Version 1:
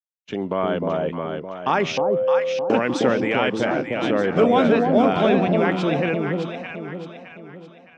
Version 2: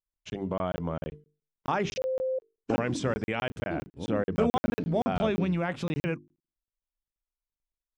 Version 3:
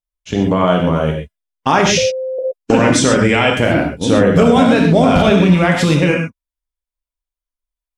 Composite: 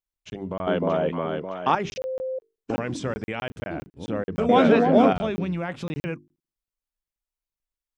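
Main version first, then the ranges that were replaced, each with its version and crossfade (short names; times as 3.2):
2
0.67–1.75 from 1
4.49–5.13 from 1
not used: 3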